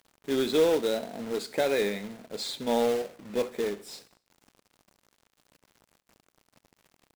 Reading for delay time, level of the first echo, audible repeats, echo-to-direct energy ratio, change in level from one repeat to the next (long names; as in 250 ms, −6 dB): 68 ms, −20.5 dB, 3, −19.5 dB, −6.0 dB